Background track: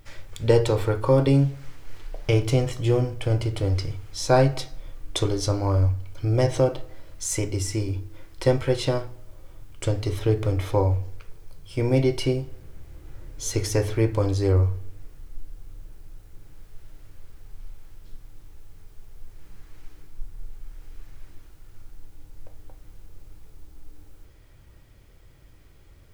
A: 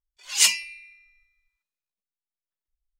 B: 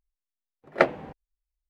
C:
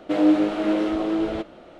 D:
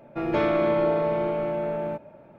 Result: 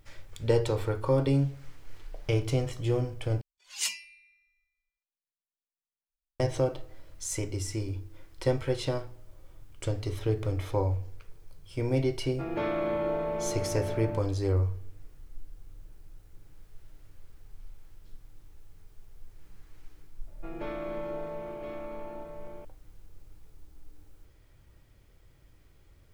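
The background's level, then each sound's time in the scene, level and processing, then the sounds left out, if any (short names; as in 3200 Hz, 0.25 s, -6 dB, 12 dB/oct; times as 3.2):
background track -6.5 dB
3.41 replace with A -13 dB
12.23 add D -7.5 dB
20.27 add D -14 dB + echo 1.02 s -6.5 dB
not used: B, C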